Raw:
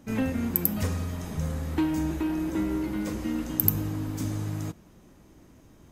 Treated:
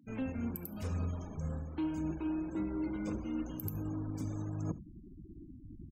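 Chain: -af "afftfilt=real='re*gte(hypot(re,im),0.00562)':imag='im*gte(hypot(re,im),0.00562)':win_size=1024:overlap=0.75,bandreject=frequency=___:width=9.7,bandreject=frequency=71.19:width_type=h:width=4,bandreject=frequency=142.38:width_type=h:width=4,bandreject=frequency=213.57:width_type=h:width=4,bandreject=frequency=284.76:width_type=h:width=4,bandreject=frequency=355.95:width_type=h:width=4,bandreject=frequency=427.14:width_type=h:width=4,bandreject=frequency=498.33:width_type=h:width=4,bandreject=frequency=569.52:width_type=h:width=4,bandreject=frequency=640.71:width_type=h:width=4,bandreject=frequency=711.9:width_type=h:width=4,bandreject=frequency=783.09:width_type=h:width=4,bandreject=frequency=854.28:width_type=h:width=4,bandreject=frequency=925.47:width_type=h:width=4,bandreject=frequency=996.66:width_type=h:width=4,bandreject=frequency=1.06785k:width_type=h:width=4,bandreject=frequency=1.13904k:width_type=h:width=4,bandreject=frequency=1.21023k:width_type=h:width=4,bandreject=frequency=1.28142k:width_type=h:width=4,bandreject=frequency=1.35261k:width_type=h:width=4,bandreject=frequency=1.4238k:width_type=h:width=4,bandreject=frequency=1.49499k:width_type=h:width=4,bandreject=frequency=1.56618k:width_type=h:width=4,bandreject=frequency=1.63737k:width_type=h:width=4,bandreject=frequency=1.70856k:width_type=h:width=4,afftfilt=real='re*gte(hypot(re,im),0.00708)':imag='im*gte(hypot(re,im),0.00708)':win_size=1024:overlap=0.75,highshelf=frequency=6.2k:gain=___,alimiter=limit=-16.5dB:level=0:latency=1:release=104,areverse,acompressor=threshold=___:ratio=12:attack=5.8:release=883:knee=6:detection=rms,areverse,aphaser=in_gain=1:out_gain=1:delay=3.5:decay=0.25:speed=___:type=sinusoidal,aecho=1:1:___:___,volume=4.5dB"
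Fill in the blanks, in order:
1.9k, -4.5, -37dB, 1.9, 71, 0.0841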